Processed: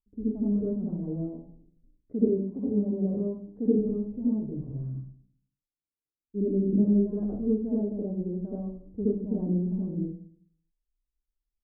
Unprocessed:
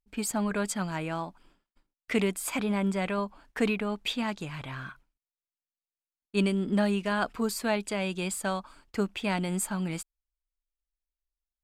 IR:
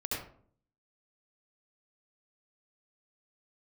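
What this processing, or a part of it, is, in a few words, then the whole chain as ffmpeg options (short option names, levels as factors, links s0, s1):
next room: -filter_complex "[0:a]lowpass=f=400:w=0.5412,lowpass=f=400:w=1.3066[s0];[1:a]atrim=start_sample=2205[s1];[s0][s1]afir=irnorm=-1:irlink=0,asettb=1/sr,asplit=3[s2][s3][s4];[s2]atrim=end=2.124[s5];[s3]atrim=start=2.12:end=3.79,asetpts=PTS-STARTPTS,afade=t=in:d=0.004:c=qsin,afade=t=out:st=1.666:d=0.004:c=qsin,highpass=68[s6];[s4]atrim=start=3.786[s7];[s5][s6]acrossfade=d=0.004:c1=hsin:c2=qsin[s8];[s8][s7]acrossfade=d=0.004:c1=qsin:c2=hsin"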